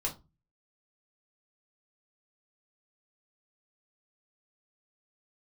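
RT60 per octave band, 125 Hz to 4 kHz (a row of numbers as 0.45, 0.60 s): 0.55, 0.40, 0.25, 0.25, 0.20, 0.20 s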